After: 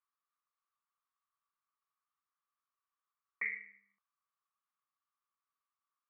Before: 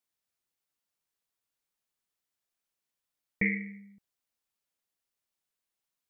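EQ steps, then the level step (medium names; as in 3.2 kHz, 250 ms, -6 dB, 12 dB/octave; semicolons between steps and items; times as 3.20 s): ladder band-pass 1.2 kHz, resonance 85%; +7.0 dB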